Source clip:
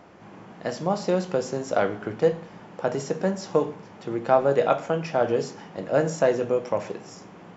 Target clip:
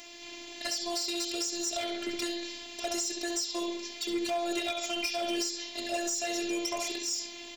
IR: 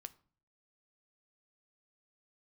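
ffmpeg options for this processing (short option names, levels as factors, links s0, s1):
-filter_complex "[0:a]aexciter=amount=15.9:drive=3.2:freq=2100,afftfilt=real='hypot(re,im)*cos(PI*b)':imag='0':win_size=512:overlap=0.75,asplit=2[s0][s1];[s1]adelay=67,lowpass=f=4700:p=1,volume=0.473,asplit=2[s2][s3];[s3]adelay=67,lowpass=f=4700:p=1,volume=0.48,asplit=2[s4][s5];[s5]adelay=67,lowpass=f=4700:p=1,volume=0.48,asplit=2[s6][s7];[s7]adelay=67,lowpass=f=4700:p=1,volume=0.48,asplit=2[s8][s9];[s9]adelay=67,lowpass=f=4700:p=1,volume=0.48,asplit=2[s10][s11];[s11]adelay=67,lowpass=f=4700:p=1,volume=0.48[s12];[s0][s2][s4][s6][s8][s10][s12]amix=inputs=7:normalize=0,alimiter=limit=0.447:level=0:latency=1:release=423,acompressor=threshold=0.0631:ratio=6,asoftclip=type=hard:threshold=0.075,volume=0.794"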